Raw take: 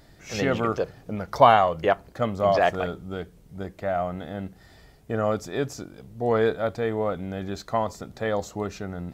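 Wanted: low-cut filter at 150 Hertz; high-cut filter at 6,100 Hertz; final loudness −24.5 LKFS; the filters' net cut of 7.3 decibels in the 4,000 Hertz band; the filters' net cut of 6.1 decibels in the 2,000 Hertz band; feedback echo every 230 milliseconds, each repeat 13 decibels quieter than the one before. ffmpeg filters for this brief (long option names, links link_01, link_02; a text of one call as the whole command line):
ffmpeg -i in.wav -af "highpass=150,lowpass=6100,equalizer=frequency=2000:width_type=o:gain=-7,equalizer=frequency=4000:width_type=o:gain=-6.5,aecho=1:1:230|460|690:0.224|0.0493|0.0108,volume=2dB" out.wav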